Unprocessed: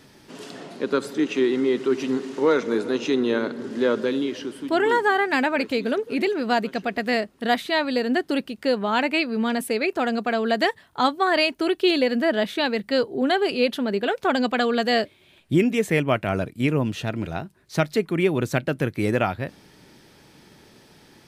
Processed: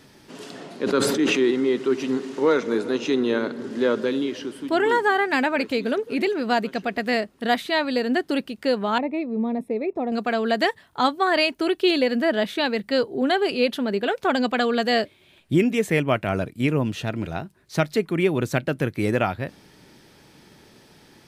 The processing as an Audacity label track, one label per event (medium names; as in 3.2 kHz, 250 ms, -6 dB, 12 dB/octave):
0.810000	1.510000	decay stretcher at most 28 dB/s
8.980000	10.120000	boxcar filter over 29 samples